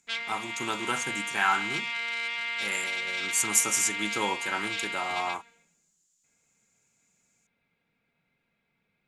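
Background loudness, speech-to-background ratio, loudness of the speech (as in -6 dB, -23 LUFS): -31.0 LUFS, 1.5 dB, -29.5 LUFS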